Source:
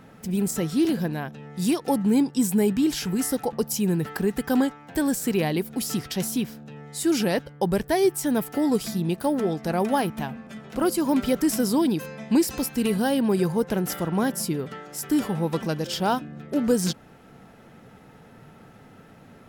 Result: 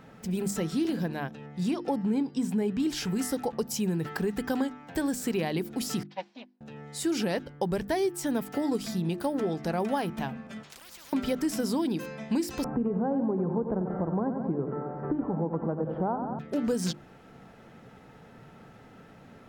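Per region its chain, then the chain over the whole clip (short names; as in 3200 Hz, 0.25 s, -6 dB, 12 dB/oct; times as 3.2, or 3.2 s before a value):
1.46–2.8 LPF 3000 Hz 6 dB/oct + de-hum 439.1 Hz, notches 14
6.03–6.61 minimum comb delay 4 ms + speaker cabinet 480–4200 Hz, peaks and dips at 850 Hz +7 dB, 1300 Hz -7 dB, 3300 Hz -4 dB + upward expander 2.5:1, over -50 dBFS
10.63–11.13 compressor 2:1, threshold -37 dBFS + spectral compressor 10:1
12.64–16.39 LPF 1100 Hz 24 dB/oct + feedback echo 90 ms, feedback 58%, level -9.5 dB + three-band squash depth 70%
whole clip: bell 12000 Hz -8 dB 0.76 oct; notches 50/100/150/200/250/300/350 Hz; compressor 3:1, threshold -24 dBFS; gain -1.5 dB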